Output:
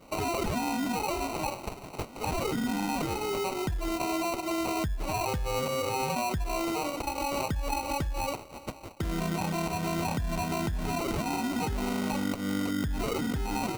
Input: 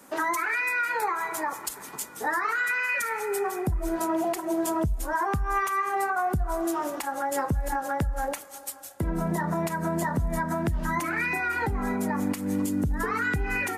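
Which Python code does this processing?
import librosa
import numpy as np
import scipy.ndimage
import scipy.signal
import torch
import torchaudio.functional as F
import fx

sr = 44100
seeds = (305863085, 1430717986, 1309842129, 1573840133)

p1 = fx.over_compress(x, sr, threshold_db=-29.0, ratio=-1.0)
p2 = x + (p1 * librosa.db_to_amplitude(-2.5))
p3 = fx.sample_hold(p2, sr, seeds[0], rate_hz=1700.0, jitter_pct=0)
y = p3 * librosa.db_to_amplitude(-7.0)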